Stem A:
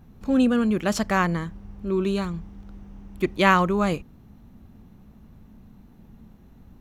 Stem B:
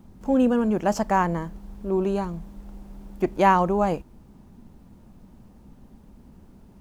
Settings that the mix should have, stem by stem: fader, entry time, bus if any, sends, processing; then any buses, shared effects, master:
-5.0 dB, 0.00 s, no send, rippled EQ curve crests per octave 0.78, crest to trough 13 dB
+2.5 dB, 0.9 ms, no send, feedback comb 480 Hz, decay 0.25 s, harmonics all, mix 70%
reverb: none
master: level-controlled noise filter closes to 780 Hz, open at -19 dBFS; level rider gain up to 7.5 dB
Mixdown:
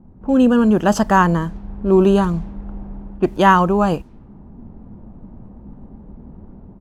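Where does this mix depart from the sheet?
stem A: missing rippled EQ curve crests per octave 0.78, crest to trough 13 dB; stem B: missing feedback comb 480 Hz, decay 0.25 s, harmonics all, mix 70%

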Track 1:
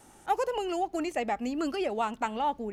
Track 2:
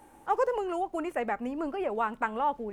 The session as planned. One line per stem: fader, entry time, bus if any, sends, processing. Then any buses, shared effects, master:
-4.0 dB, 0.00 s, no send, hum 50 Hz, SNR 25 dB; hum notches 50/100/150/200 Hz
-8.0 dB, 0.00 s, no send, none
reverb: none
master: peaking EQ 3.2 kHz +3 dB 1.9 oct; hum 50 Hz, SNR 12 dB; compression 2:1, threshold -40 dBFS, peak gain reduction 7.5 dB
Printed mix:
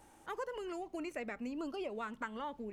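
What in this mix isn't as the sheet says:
stem 1 -4.0 dB -> -11.5 dB; master: missing hum 50 Hz, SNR 12 dB

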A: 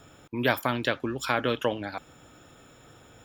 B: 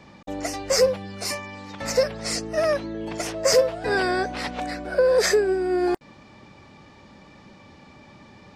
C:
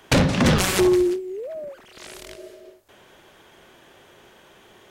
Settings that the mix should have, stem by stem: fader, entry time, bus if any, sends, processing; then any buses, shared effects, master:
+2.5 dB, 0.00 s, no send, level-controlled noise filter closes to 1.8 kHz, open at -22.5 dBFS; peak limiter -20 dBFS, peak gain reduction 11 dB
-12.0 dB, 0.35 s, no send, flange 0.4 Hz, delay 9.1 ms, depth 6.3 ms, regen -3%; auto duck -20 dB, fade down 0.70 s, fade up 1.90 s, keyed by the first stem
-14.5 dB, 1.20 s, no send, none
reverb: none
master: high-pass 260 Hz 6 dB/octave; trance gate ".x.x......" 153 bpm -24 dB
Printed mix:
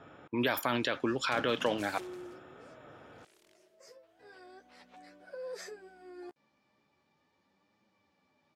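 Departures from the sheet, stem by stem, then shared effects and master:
stem B -12.0 dB -> -20.5 dB; stem C -14.5 dB -> -25.5 dB; master: missing trance gate ".x.x......" 153 bpm -24 dB

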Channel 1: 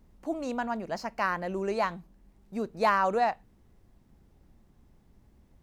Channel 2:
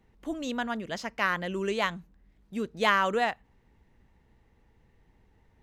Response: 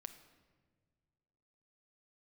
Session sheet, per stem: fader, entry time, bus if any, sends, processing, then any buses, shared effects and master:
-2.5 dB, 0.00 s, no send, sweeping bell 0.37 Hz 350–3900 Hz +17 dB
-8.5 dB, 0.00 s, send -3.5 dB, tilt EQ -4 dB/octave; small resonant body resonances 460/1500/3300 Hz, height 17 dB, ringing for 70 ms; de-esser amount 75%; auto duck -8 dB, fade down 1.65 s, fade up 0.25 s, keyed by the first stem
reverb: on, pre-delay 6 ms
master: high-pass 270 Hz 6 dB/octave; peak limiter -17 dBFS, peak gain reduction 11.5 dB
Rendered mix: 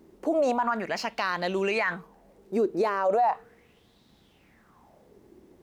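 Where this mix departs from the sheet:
stem 1 -2.5 dB -> +6.0 dB; stem 2 -8.5 dB -> -17.5 dB

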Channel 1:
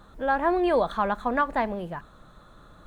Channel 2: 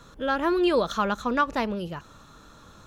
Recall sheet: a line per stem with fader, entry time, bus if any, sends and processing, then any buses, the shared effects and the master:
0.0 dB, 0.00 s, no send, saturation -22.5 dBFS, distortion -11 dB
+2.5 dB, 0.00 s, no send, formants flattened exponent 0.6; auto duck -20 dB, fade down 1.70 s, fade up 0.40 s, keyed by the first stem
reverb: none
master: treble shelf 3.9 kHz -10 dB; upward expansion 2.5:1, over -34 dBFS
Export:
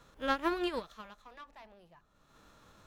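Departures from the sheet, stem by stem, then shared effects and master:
stem 1 0.0 dB -> -10.0 dB; stem 2: polarity flipped

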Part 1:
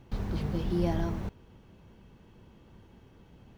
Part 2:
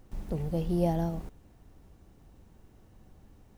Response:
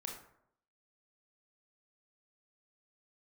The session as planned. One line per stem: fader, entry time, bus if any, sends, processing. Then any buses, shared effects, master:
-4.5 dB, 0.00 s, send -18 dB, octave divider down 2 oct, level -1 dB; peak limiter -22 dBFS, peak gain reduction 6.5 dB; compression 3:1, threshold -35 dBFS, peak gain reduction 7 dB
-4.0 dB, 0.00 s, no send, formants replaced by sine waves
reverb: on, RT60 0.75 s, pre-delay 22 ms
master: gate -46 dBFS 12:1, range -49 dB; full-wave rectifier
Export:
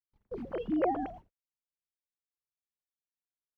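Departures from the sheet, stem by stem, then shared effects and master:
stem 1 -4.5 dB -> -16.0 dB; master: missing full-wave rectifier

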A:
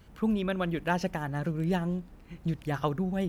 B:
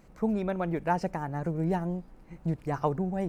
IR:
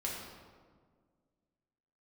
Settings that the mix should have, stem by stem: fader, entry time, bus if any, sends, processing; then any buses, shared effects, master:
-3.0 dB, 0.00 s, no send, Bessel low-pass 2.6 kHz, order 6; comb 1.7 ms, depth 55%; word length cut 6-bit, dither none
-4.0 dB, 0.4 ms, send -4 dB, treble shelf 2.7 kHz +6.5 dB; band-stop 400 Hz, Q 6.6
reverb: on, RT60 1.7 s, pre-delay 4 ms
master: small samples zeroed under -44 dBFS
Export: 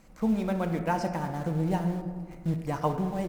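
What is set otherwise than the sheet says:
stem A -3.0 dB -> -14.0 dB; master: missing small samples zeroed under -44 dBFS

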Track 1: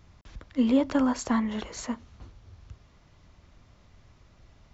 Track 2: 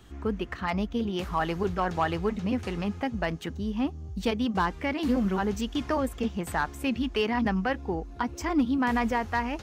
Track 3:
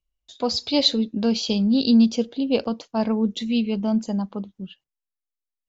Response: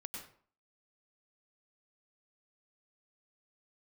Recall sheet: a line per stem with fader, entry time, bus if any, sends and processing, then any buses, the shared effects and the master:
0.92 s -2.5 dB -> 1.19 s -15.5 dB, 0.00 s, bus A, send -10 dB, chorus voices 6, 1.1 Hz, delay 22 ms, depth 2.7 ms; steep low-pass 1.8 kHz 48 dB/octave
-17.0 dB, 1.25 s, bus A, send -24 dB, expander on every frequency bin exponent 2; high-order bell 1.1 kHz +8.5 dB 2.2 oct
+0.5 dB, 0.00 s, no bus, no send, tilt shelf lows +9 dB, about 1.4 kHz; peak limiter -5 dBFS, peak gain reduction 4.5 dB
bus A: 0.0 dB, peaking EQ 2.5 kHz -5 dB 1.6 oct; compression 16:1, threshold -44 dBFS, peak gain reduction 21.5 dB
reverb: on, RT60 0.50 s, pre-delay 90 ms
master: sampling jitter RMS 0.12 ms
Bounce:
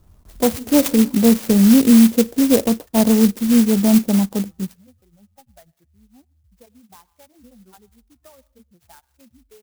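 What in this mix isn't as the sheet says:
stem 1 -2.5 dB -> +5.0 dB; stem 2: entry 1.25 s -> 2.35 s

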